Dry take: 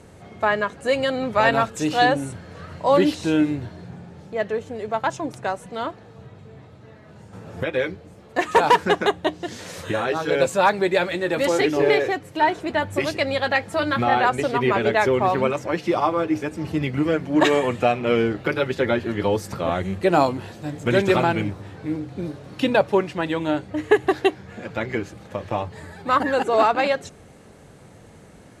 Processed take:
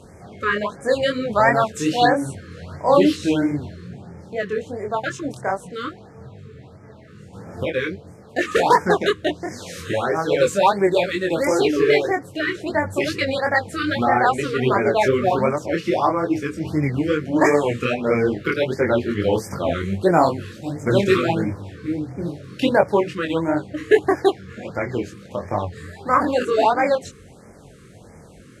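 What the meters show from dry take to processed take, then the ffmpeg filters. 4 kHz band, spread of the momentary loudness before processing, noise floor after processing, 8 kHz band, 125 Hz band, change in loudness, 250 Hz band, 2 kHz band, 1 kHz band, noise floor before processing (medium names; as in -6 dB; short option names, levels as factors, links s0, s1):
0.0 dB, 13 LU, -45 dBFS, +2.0 dB, +2.0 dB, +1.5 dB, +1.5 dB, +0.5 dB, +0.5 dB, -47 dBFS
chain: -af "flanger=delay=20:depth=4.8:speed=2.5,afftfilt=real='re*(1-between(b*sr/1024,710*pow(3500/710,0.5+0.5*sin(2*PI*1.5*pts/sr))/1.41,710*pow(3500/710,0.5+0.5*sin(2*PI*1.5*pts/sr))*1.41))':imag='im*(1-between(b*sr/1024,710*pow(3500/710,0.5+0.5*sin(2*PI*1.5*pts/sr))/1.41,710*pow(3500/710,0.5+0.5*sin(2*PI*1.5*pts/sr))*1.41))':win_size=1024:overlap=0.75,volume=1.78"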